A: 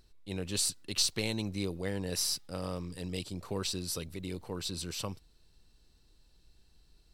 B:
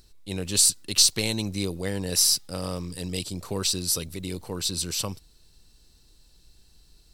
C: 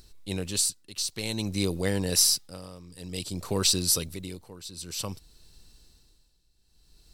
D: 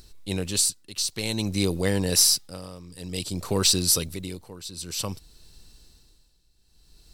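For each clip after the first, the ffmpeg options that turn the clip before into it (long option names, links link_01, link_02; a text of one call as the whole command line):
ffmpeg -i in.wav -af "bass=frequency=250:gain=1,treble=frequency=4000:gain=8,volume=5dB" out.wav
ffmpeg -i in.wav -af "tremolo=f=0.54:d=0.85,volume=2.5dB" out.wav
ffmpeg -i in.wav -af "asoftclip=type=tanh:threshold=-10dB,volume=3.5dB" out.wav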